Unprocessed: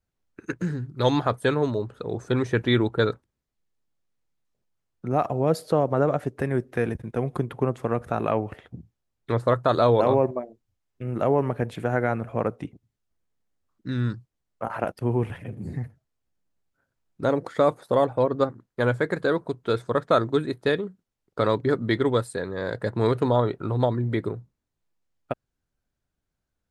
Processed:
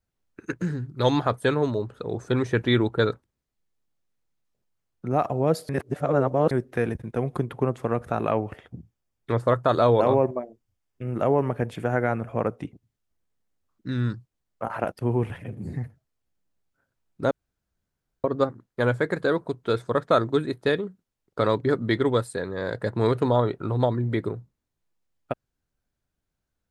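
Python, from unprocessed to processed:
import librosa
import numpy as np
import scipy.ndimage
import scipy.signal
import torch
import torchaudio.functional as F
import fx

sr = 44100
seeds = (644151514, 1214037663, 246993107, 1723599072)

y = fx.notch(x, sr, hz=4000.0, q=12.0, at=(8.51, 12.57))
y = fx.edit(y, sr, fx.reverse_span(start_s=5.69, length_s=0.82),
    fx.room_tone_fill(start_s=17.31, length_s=0.93), tone=tone)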